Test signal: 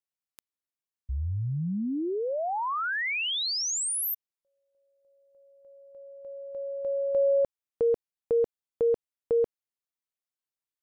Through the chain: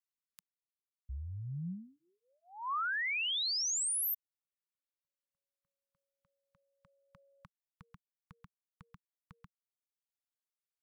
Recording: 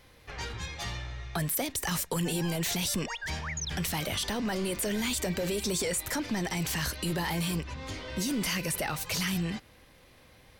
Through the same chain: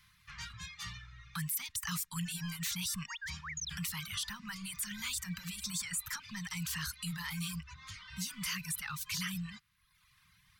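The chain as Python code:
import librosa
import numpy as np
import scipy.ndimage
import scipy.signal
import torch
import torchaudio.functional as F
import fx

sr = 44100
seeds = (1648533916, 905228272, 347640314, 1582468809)

y = fx.dereverb_blind(x, sr, rt60_s=1.0)
y = scipy.signal.sosfilt(scipy.signal.ellip(3, 1.0, 40, [180.0, 1100.0], 'bandstop', fs=sr, output='sos'), y)
y = fx.low_shelf(y, sr, hz=80.0, db=-9.0)
y = y * librosa.db_to_amplitude(-4.0)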